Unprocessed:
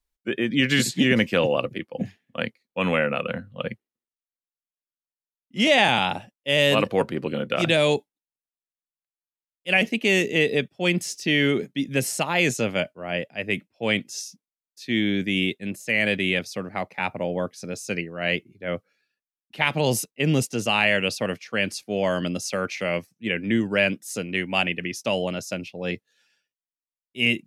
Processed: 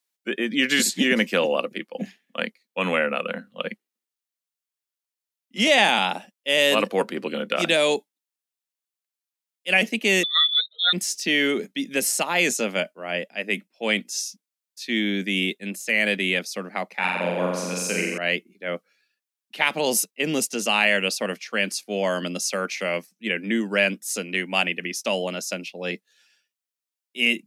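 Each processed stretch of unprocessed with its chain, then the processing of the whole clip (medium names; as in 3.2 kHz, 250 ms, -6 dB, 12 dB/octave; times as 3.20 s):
10.23–10.93 s: spectral contrast enhancement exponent 2.4 + frequency inversion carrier 3.9 kHz + upward compressor, threshold -34 dBFS
16.96–18.18 s: doubling 12 ms -12.5 dB + de-esser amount 25% + flutter echo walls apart 7.6 m, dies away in 1.2 s
whole clip: dynamic bell 3 kHz, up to -4 dB, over -36 dBFS, Q 0.83; Chebyshev high-pass 190 Hz, order 4; tilt shelf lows -4.5 dB, about 1.3 kHz; trim +3 dB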